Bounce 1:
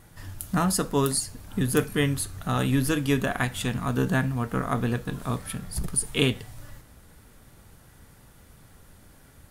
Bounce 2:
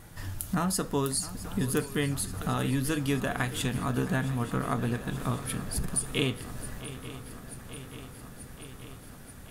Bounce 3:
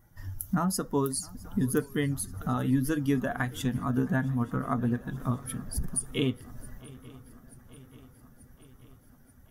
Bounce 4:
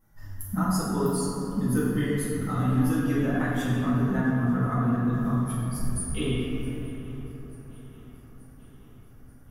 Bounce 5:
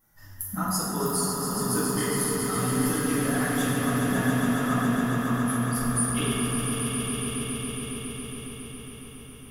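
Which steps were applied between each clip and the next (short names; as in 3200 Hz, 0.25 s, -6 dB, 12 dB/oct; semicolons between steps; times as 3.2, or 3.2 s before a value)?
compressor 2:1, threshold -34 dBFS, peak gain reduction 10 dB; on a send: swung echo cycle 0.884 s, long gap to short 3:1, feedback 71%, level -16 dB; on the sum: gain +3 dB
per-bin expansion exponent 1.5; thirty-one-band EQ 250 Hz +5 dB, 2500 Hz -9 dB, 4000 Hz -10 dB, 8000 Hz -8 dB; gain +2.5 dB
reverb RT60 3.1 s, pre-delay 4 ms, DRR -10 dB; gain -8 dB
tilt +2 dB/oct; on a send: swelling echo 0.138 s, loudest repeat 5, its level -8 dB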